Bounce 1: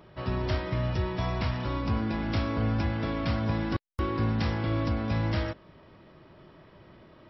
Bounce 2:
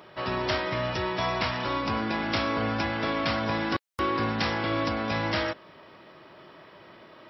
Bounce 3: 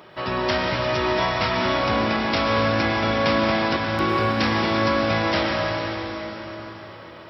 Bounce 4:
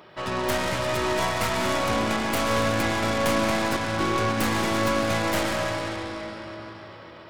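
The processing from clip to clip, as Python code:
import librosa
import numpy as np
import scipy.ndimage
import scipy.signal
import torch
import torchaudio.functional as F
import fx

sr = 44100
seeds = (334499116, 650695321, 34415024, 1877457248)

y1 = fx.highpass(x, sr, hz=640.0, slope=6)
y1 = y1 * librosa.db_to_amplitude(8.5)
y2 = fx.rev_plate(y1, sr, seeds[0], rt60_s=4.2, hf_ratio=0.9, predelay_ms=95, drr_db=-0.5)
y2 = y2 * librosa.db_to_amplitude(3.5)
y3 = fx.tracing_dist(y2, sr, depth_ms=0.2)
y3 = y3 * librosa.db_to_amplitude(-3.0)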